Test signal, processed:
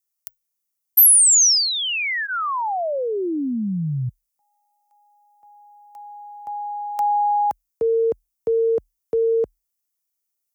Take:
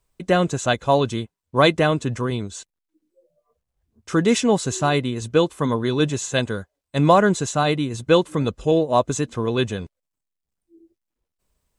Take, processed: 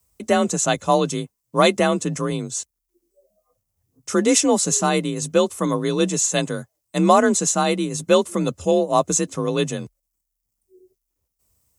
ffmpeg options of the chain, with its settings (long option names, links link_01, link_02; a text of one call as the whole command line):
ffmpeg -i in.wav -af "afreqshift=38,bandreject=frequency=1600:width=12,aexciter=amount=4.3:drive=2.3:freq=5200" out.wav